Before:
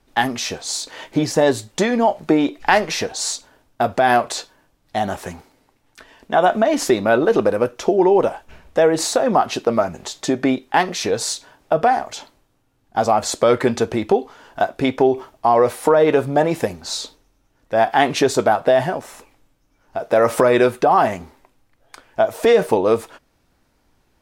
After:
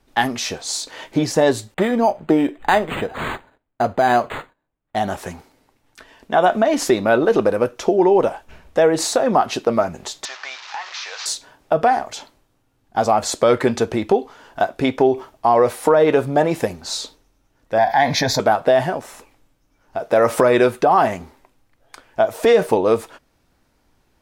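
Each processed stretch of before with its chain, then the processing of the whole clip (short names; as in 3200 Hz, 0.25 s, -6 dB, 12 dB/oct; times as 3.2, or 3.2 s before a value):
1.74–4.96 gate -53 dBFS, range -17 dB + decimation joined by straight lines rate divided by 8×
10.25–11.26 delta modulation 32 kbps, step -26 dBFS + HPF 920 Hz 24 dB/oct + compressor 4:1, threshold -26 dBFS
17.78–18.4 fixed phaser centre 1900 Hz, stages 8 + fast leveller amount 50%
whole clip: dry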